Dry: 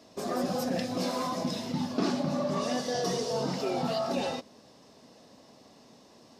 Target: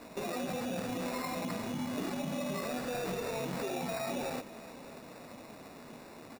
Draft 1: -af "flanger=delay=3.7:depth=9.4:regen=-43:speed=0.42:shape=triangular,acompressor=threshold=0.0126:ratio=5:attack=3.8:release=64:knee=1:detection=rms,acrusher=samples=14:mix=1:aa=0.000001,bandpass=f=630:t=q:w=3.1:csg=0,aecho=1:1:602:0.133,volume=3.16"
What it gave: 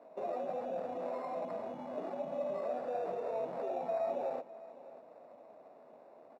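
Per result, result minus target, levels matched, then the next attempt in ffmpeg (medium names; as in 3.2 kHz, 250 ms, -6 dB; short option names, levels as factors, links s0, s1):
compression: peak gain reduction -5 dB; 500 Hz band +3.5 dB
-af "flanger=delay=3.7:depth=9.4:regen=-43:speed=0.42:shape=triangular,acompressor=threshold=0.00596:ratio=5:attack=3.8:release=64:knee=1:detection=rms,acrusher=samples=14:mix=1:aa=0.000001,bandpass=f=630:t=q:w=3.1:csg=0,aecho=1:1:602:0.133,volume=3.16"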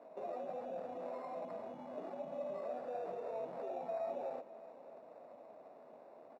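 500 Hz band +4.0 dB
-af "flanger=delay=3.7:depth=9.4:regen=-43:speed=0.42:shape=triangular,acompressor=threshold=0.00596:ratio=5:attack=3.8:release=64:knee=1:detection=rms,acrusher=samples=14:mix=1:aa=0.000001,aecho=1:1:602:0.133,volume=3.16"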